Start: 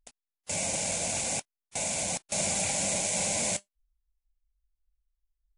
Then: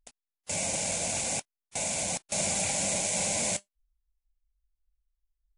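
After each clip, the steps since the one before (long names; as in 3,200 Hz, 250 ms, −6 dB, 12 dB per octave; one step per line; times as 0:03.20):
no processing that can be heard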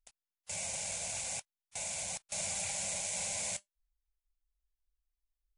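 parametric band 290 Hz −15 dB 1.4 octaves
level −7 dB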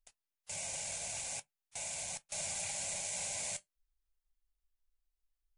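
convolution reverb, pre-delay 3 ms, DRR 11 dB
level −2.5 dB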